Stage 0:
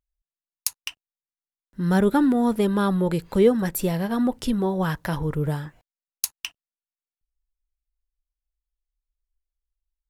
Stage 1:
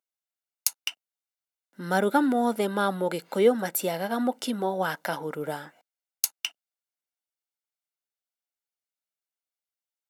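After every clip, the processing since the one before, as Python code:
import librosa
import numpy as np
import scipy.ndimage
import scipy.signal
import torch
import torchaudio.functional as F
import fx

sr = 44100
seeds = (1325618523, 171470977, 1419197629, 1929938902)

y = scipy.signal.sosfilt(scipy.signal.butter(4, 260.0, 'highpass', fs=sr, output='sos'), x)
y = y + 0.44 * np.pad(y, (int(1.4 * sr / 1000.0), 0))[:len(y)]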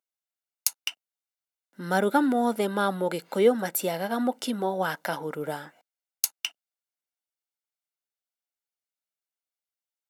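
y = x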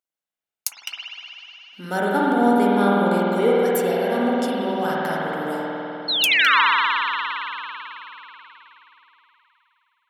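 y = fx.spec_paint(x, sr, seeds[0], shape='fall', start_s=6.08, length_s=0.53, low_hz=880.0, high_hz=4400.0, level_db=-20.0)
y = fx.rev_spring(y, sr, rt60_s=3.8, pass_ms=(50,), chirp_ms=75, drr_db=-6.0)
y = y * librosa.db_to_amplitude(-1.5)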